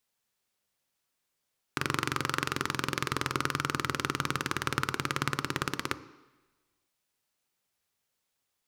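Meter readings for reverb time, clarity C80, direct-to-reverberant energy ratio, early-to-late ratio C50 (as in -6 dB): 1.1 s, 17.5 dB, 11.5 dB, 15.0 dB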